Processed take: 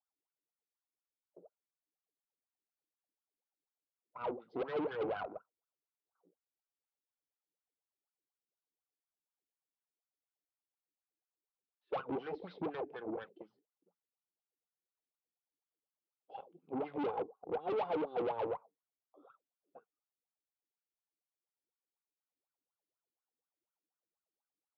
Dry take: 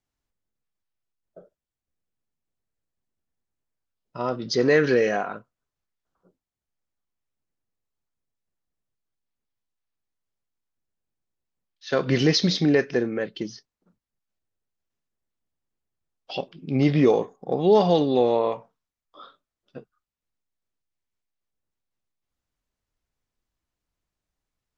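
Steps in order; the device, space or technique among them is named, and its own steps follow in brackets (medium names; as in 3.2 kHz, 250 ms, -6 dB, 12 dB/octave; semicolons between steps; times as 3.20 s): wah-wah guitar rig (wah-wah 4.1 Hz 290–1500 Hz, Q 8.9; valve stage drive 38 dB, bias 0.6; cabinet simulation 92–3600 Hz, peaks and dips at 170 Hz +5 dB, 470 Hz +5 dB, 800 Hz +7 dB, 1.8 kHz -9 dB); trim +2.5 dB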